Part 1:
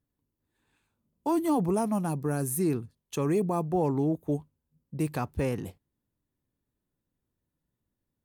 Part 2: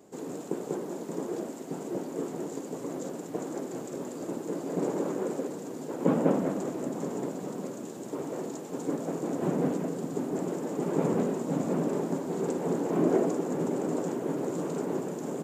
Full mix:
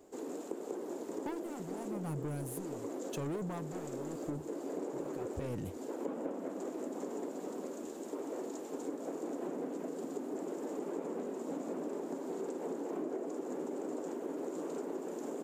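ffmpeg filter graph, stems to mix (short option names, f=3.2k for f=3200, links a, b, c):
-filter_complex "[0:a]asoftclip=type=tanh:threshold=-30dB,aeval=exprs='val(0)*pow(10,-18*(0.5-0.5*cos(2*PI*0.89*n/s))/20)':c=same,volume=2.5dB[a];[1:a]highpass=f=260:w=0.5412,highpass=f=260:w=1.3066,volume=-4.5dB[b];[a][b]amix=inputs=2:normalize=0,lowshelf=f=450:g=4,acompressor=threshold=-36dB:ratio=6"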